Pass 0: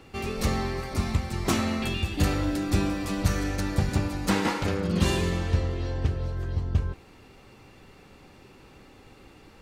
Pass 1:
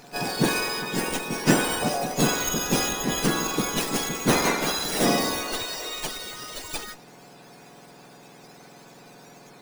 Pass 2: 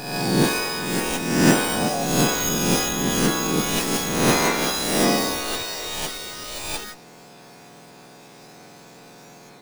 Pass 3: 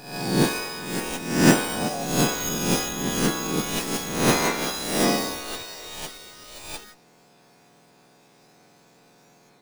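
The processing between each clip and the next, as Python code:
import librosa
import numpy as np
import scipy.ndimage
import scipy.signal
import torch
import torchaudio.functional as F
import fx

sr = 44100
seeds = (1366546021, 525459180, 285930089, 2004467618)

y1 = fx.octave_mirror(x, sr, pivot_hz=1400.0)
y1 = fx.running_max(y1, sr, window=3)
y1 = y1 * librosa.db_to_amplitude(7.5)
y2 = fx.spec_swells(y1, sr, rise_s=0.99)
y3 = fx.upward_expand(y2, sr, threshold_db=-35.0, expansion=1.5)
y3 = y3 * librosa.db_to_amplitude(1.0)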